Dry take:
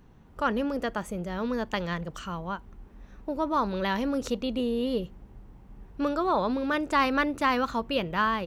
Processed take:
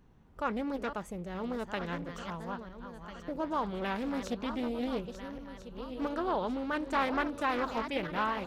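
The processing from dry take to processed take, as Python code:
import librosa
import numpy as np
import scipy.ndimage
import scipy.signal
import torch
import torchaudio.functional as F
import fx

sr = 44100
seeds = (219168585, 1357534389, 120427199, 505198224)

y = fx.reverse_delay_fb(x, sr, ms=673, feedback_pct=62, wet_db=-9.0)
y = fx.doppler_dist(y, sr, depth_ms=0.29)
y = F.gain(torch.from_numpy(y), -6.5).numpy()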